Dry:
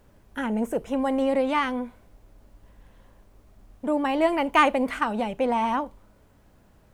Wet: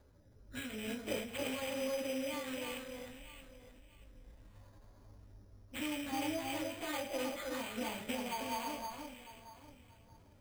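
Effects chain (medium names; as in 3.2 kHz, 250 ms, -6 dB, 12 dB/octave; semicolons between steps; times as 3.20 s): rattle on loud lows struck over -37 dBFS, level -11 dBFS; peaking EQ 100 Hz +8 dB 0.47 oct; compression 3:1, threshold -31 dBFS, peak gain reduction 13.5 dB; rotary cabinet horn 0.85 Hz, later 6.7 Hz, at 3.50 s; plain phase-vocoder stretch 1.5×; echo whose repeats swap between lows and highs 316 ms, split 1.7 kHz, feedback 51%, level -3.5 dB; reverberation, pre-delay 3 ms, DRR 4 dB; careless resampling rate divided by 8×, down filtered, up hold; endings held to a fixed fall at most 110 dB/s; trim -4 dB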